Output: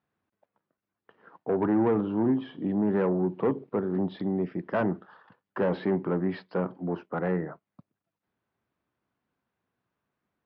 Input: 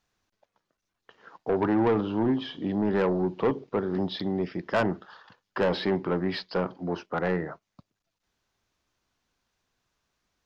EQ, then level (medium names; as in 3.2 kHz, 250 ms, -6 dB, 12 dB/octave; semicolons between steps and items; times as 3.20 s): band-pass 160–2000 Hz; bass shelf 240 Hz +10.5 dB; -3.5 dB